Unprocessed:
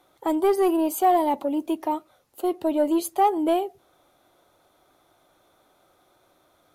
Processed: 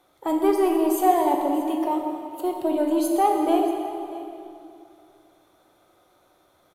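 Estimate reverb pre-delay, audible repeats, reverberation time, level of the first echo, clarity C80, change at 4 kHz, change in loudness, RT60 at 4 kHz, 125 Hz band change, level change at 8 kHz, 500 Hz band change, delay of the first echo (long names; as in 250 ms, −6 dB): 18 ms, 1, 2.7 s, −17.5 dB, 4.0 dB, +0.5 dB, +0.5 dB, 2.1 s, can't be measured, +0.5 dB, +0.5 dB, 634 ms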